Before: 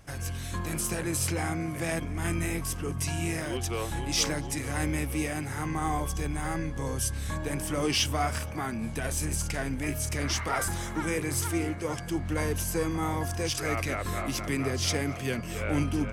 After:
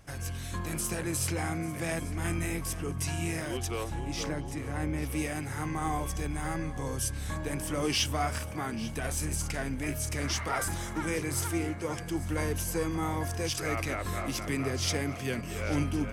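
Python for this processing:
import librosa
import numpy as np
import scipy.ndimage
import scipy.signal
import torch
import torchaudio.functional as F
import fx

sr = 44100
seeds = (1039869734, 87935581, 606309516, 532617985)

y = fx.high_shelf(x, sr, hz=2300.0, db=-11.5, at=(3.83, 5.02), fade=0.02)
y = y + 10.0 ** (-17.0 / 20.0) * np.pad(y, (int(844 * sr / 1000.0), 0))[:len(y)]
y = y * librosa.db_to_amplitude(-2.0)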